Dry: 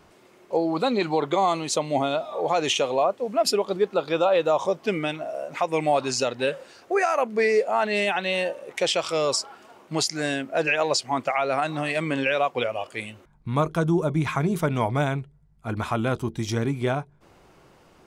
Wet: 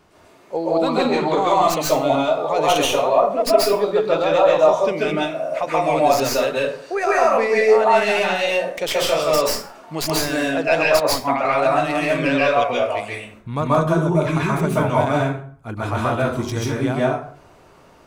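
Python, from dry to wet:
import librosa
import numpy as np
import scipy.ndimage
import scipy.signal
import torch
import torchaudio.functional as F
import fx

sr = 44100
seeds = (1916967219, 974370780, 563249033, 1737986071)

y = fx.tracing_dist(x, sr, depth_ms=0.072)
y = fx.rev_plate(y, sr, seeds[0], rt60_s=0.51, hf_ratio=0.65, predelay_ms=120, drr_db=-6.0)
y = fx.band_widen(y, sr, depth_pct=70, at=(11.0, 11.45))
y = y * 10.0 ** (-1.0 / 20.0)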